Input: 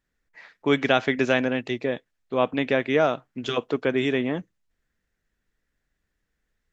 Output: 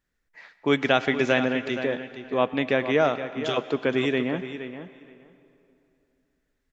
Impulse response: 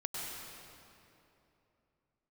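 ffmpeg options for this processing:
-filter_complex "[0:a]asplit=2[a][b];[b]adelay=469,lowpass=f=4.6k:p=1,volume=-10.5dB,asplit=2[c][d];[d]adelay=469,lowpass=f=4.6k:p=1,volume=0.15[e];[a][c][e]amix=inputs=3:normalize=0,asplit=2[f][g];[1:a]atrim=start_sample=2205,lowshelf=f=390:g=-8.5[h];[g][h]afir=irnorm=-1:irlink=0,volume=-13dB[i];[f][i]amix=inputs=2:normalize=0,volume=-1.5dB"

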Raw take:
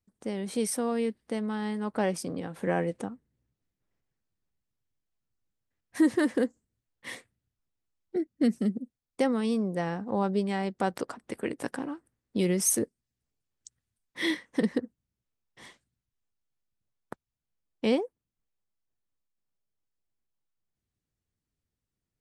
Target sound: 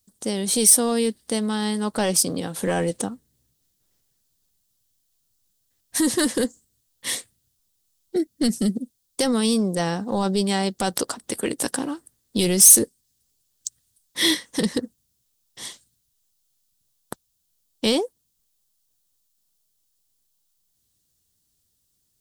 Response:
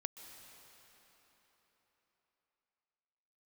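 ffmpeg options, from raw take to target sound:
-af "apsyclip=22.5dB,aexciter=amount=4.1:drive=6.4:freq=3.2k,volume=-15.5dB"

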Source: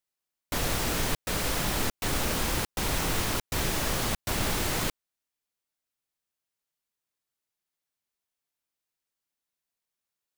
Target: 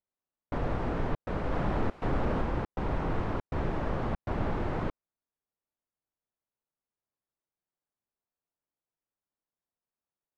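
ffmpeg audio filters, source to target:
-filter_complex "[0:a]asettb=1/sr,asplit=3[a][b][c];[a]atrim=end=1.514[d];[b]atrim=start=1.51:end=2.42,asetpts=PTS-STARTPTS,afade=t=in:d=0.004:c=qsin,afade=t=out:st=0.906:d=0.004:c=qsin,aeval=exprs='val(0)+0.5*0.0251*sgn(val(0))':c=same[e];[c]atrim=start=2.416[f];[d][e]acrossfade=d=0.004:c1=hsin:c2=qsin[g];[g][f]acrossfade=d=0.004:c1=qsin:c2=hsin,lowpass=1.1k"

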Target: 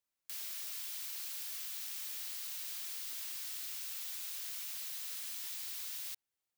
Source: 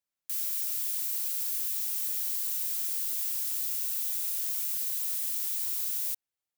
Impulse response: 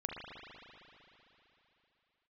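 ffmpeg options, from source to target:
-filter_complex "[0:a]acrossover=split=5300[a][b];[b]acompressor=threshold=-41dB:ratio=4:attack=1:release=60[c];[a][c]amix=inputs=2:normalize=0"

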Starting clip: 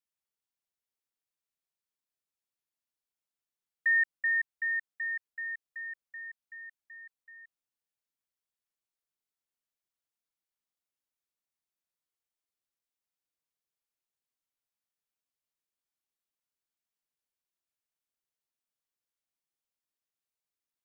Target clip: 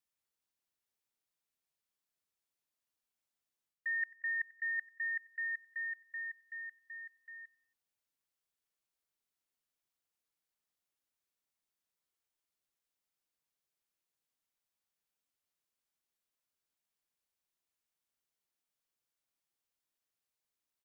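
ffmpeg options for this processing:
-af "areverse,acompressor=threshold=-36dB:ratio=6,areverse,aecho=1:1:92|184|276:0.0794|0.0381|0.0183,volume=1.5dB"

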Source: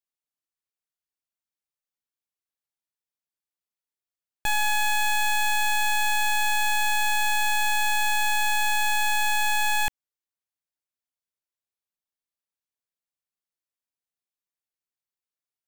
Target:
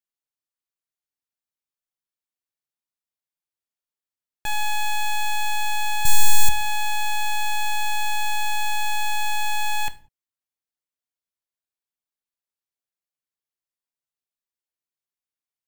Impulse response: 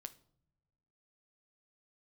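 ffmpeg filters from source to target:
-filter_complex "[0:a]asettb=1/sr,asplit=3[a][b][c];[a]atrim=end=6.054[d];[b]atrim=start=6.05:end=6.49,asetpts=PTS-STARTPTS,afade=t=in:d=0.004:c=qsin,afade=t=out:st=0.436:d=0.004:c=qsin,bass=f=250:g=14,treble=f=4k:g=13[e];[c]atrim=start=6.486[f];[d][e]acrossfade=d=0.004:c1=hsin:c2=qsin[g];[g][f]acrossfade=d=0.004:c1=qsin:c2=hsin[h];[1:a]atrim=start_sample=2205,afade=t=out:st=0.25:d=0.01,atrim=end_sample=11466[i];[h][i]afir=irnorm=-1:irlink=0,volume=3dB"

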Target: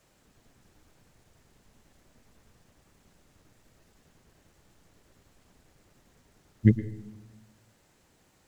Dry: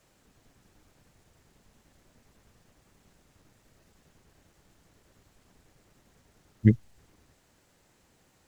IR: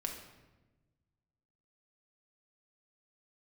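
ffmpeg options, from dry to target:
-filter_complex "[0:a]asplit=2[a][b];[1:a]atrim=start_sample=2205,asetrate=66150,aresample=44100,adelay=112[c];[b][c]afir=irnorm=-1:irlink=0,volume=-9dB[d];[a][d]amix=inputs=2:normalize=0"

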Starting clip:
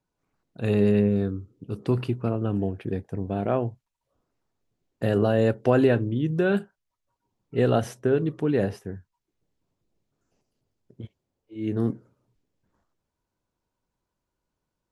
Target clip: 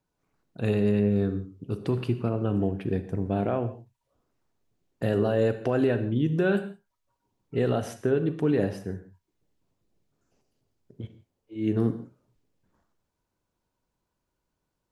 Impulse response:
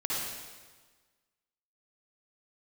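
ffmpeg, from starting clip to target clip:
-filter_complex "[0:a]alimiter=limit=-16dB:level=0:latency=1:release=260,asplit=2[a][b];[1:a]atrim=start_sample=2205,afade=t=out:st=0.3:d=0.01,atrim=end_sample=13671,asetrate=61740,aresample=44100[c];[b][c]afir=irnorm=-1:irlink=0,volume=-12.5dB[d];[a][d]amix=inputs=2:normalize=0"

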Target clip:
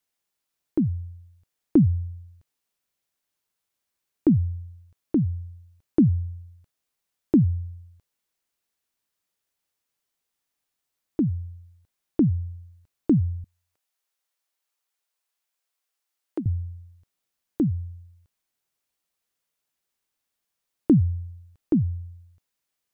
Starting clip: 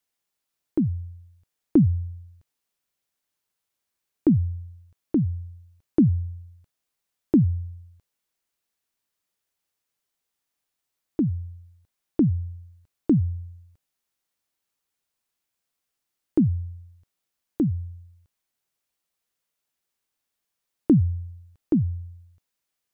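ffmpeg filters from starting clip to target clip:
-filter_complex "[0:a]asettb=1/sr,asplit=3[a][b][c];[a]atrim=end=13.444[d];[b]atrim=start=13.44:end=16.46,asetpts=PTS-STARTPTS,afade=t=in:d=0.004:c=qsin,afade=t=out:st=3.016:d=0.004:c=qsin,highpass=500[e];[c]atrim=start=16.456[f];[d][e]acrossfade=d=0.004:c1=hsin:c2=qsin[g];[g][f]acrossfade=d=0.004:c1=qsin:c2=hsin"

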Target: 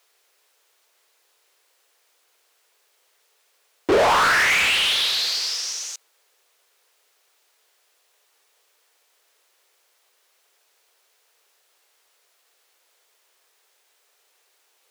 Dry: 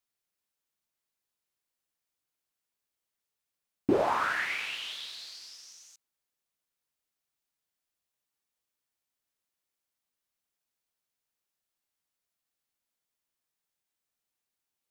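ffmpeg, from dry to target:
-filter_complex "[0:a]lowshelf=f=290:t=q:w=3:g=-13,asplit=2[a][b];[b]highpass=f=720:p=1,volume=32dB,asoftclip=type=tanh:threshold=-11dB[c];[a][c]amix=inputs=2:normalize=0,lowpass=f=5.9k:p=1,volume=-6dB"

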